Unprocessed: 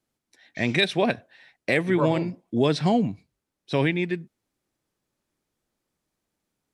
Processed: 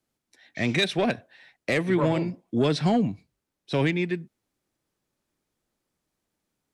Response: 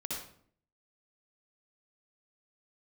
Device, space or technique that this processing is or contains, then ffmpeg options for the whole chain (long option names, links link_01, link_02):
one-band saturation: -filter_complex "[0:a]acrossover=split=270|3900[link_01][link_02][link_03];[link_02]asoftclip=type=tanh:threshold=-18.5dB[link_04];[link_01][link_04][link_03]amix=inputs=3:normalize=0"